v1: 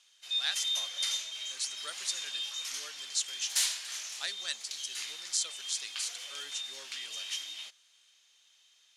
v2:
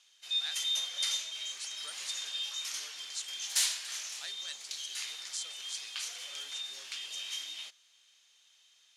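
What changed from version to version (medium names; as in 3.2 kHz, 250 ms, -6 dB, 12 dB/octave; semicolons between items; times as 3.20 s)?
speech -8.0 dB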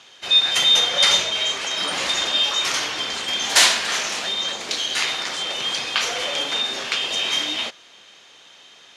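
background +10.5 dB; master: remove pre-emphasis filter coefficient 0.97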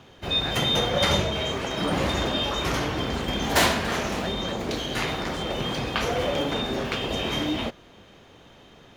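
master: remove frequency weighting ITU-R 468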